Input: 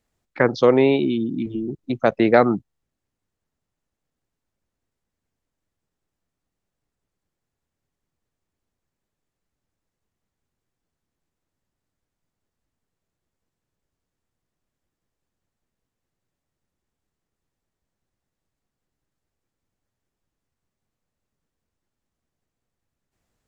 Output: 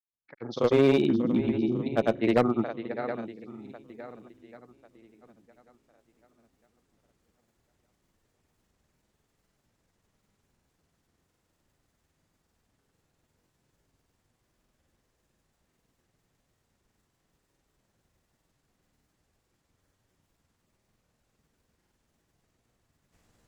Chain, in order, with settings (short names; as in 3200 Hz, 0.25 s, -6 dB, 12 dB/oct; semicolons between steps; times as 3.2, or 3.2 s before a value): opening faded in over 2.94 s; AGC gain up to 16.5 dB; on a send: swung echo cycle 1.082 s, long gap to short 1.5:1, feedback 31%, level -14 dB; on the sum: grains; one-sided clip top -12 dBFS; gain -5.5 dB